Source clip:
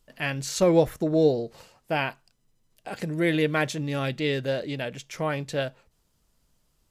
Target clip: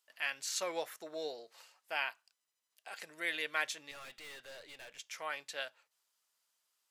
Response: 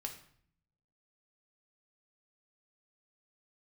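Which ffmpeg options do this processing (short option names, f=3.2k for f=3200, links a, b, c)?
-filter_complex "[0:a]highpass=1.1k,asettb=1/sr,asplit=3[a][b][c];[a]atrim=end=3.914[d];[b]atrim=start=3.91:end=4.99,asetpts=PTS-STARTPTS,afade=t=in:d=0.004:c=qsin,afade=t=out:st=1.076:d=0.004:c=qsin,aeval=exprs='(tanh(126*val(0)+0.3)-tanh(0.3))/126':c=same[e];[c]atrim=start=4.986[f];[d][e]acrossfade=d=0.004:c1=hsin:c2=qsin[g];[g][f]acrossfade=d=0.004:c1=qsin:c2=hsin,volume=-5.5dB"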